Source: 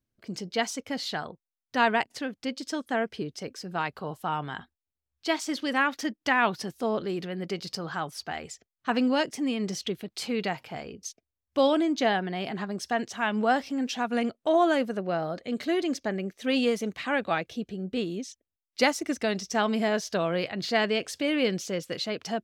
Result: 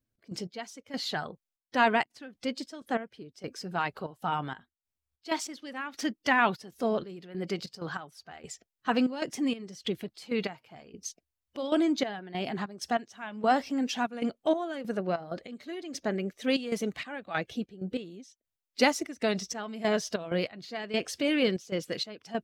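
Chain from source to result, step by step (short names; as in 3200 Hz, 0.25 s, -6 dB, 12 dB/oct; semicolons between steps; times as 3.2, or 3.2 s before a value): bin magnitudes rounded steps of 15 dB; step gate "x.x...xxxx.xx..x" 96 bpm -12 dB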